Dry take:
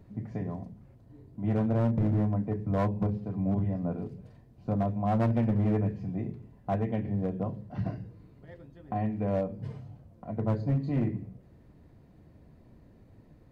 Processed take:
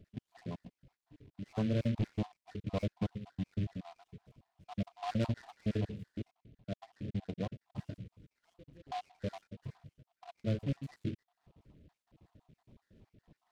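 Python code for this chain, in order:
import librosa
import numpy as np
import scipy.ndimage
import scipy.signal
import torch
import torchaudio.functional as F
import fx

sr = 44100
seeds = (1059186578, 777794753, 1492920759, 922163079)

y = fx.spec_dropout(x, sr, seeds[0], share_pct=63)
y = fx.lowpass(y, sr, hz=1200.0, slope=12, at=(6.31, 7.55))
y = fx.noise_mod_delay(y, sr, seeds[1], noise_hz=2500.0, depth_ms=0.053)
y = F.gain(torch.from_numpy(y), -4.5).numpy()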